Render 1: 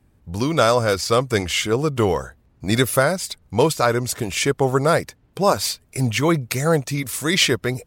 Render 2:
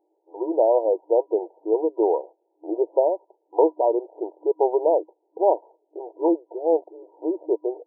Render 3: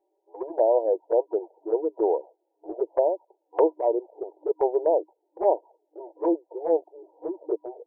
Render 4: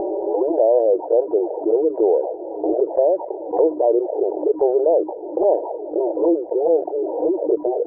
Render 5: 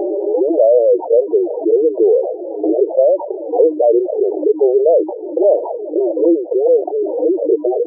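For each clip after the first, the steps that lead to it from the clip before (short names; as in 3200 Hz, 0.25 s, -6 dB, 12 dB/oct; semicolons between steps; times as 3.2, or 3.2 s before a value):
FFT band-pass 310–970 Hz
envelope flanger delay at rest 5.2 ms, full sweep at -15.5 dBFS; bell 220 Hz -8.5 dB 0.76 oct
upward compressor, threshold -29 dBFS; ladder low-pass 760 Hz, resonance 30%; fast leveller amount 70%; gain +7 dB
spectral contrast raised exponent 1.9; gain +5 dB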